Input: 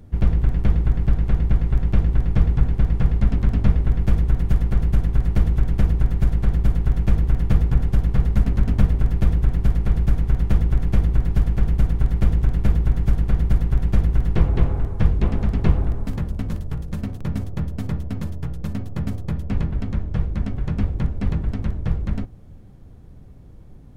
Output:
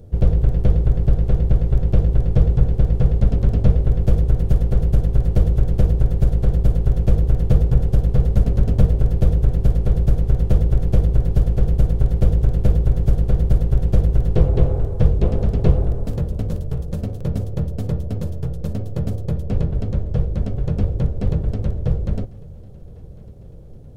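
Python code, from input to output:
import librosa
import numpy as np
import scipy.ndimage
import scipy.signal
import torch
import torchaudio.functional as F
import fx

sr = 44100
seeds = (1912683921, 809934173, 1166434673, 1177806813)

y = fx.graphic_eq_10(x, sr, hz=(125, 250, 500, 1000, 2000), db=(4, -6, 11, -6, -8))
y = fx.echo_feedback(y, sr, ms=1100, feedback_pct=59, wet_db=-23)
y = F.gain(torch.from_numpy(y), 1.5).numpy()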